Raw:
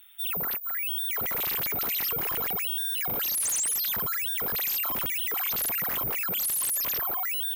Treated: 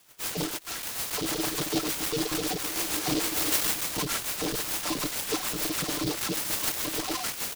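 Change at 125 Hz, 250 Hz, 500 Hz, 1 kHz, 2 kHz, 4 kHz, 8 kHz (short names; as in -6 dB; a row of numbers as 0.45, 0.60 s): +6.0, +13.0, +7.0, +2.0, +0.5, +2.5, +0.5 dB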